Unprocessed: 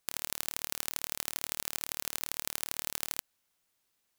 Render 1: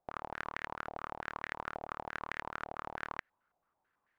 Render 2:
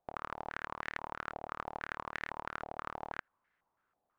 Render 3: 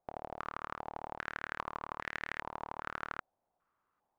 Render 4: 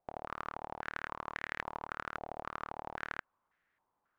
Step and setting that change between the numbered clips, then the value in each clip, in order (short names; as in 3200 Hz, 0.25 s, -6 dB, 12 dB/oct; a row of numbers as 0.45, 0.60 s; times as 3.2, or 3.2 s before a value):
stepped low-pass, rate: 9.1, 6.1, 2.5, 3.7 Hz